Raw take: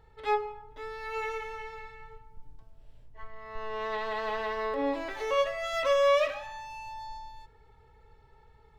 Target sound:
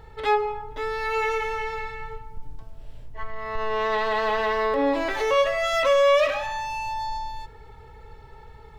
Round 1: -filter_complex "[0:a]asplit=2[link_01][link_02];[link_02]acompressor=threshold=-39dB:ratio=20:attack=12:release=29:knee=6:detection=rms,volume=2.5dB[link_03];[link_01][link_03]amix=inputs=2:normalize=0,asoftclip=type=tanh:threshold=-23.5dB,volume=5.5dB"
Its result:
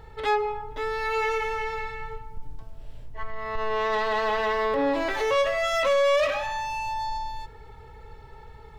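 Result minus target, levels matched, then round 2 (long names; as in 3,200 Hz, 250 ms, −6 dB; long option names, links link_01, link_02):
soft clipping: distortion +8 dB
-filter_complex "[0:a]asplit=2[link_01][link_02];[link_02]acompressor=threshold=-39dB:ratio=20:attack=12:release=29:knee=6:detection=rms,volume=2.5dB[link_03];[link_01][link_03]amix=inputs=2:normalize=0,asoftclip=type=tanh:threshold=-17dB,volume=5.5dB"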